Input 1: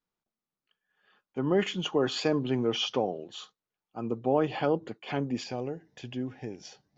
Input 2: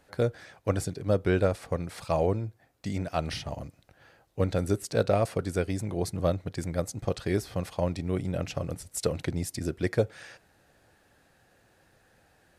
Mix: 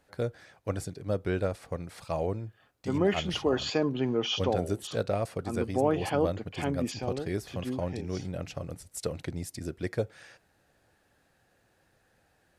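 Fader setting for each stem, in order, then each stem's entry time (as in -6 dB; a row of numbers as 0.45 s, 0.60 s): -0.5 dB, -5.0 dB; 1.50 s, 0.00 s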